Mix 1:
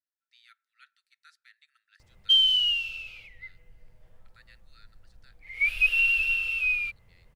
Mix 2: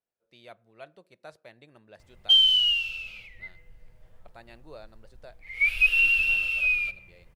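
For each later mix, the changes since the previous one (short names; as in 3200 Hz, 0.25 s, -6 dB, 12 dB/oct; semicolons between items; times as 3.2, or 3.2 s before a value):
speech: remove rippled Chebyshev high-pass 1300 Hz, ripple 6 dB; reverb: on, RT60 0.90 s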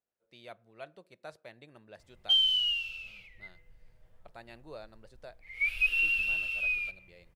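background -6.5 dB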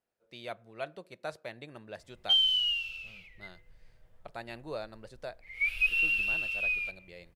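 speech +7.5 dB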